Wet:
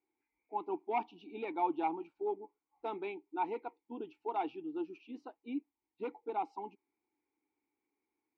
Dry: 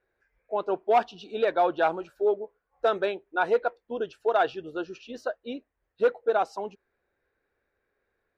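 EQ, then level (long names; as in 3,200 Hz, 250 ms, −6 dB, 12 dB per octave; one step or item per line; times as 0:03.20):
formant filter u
+4.5 dB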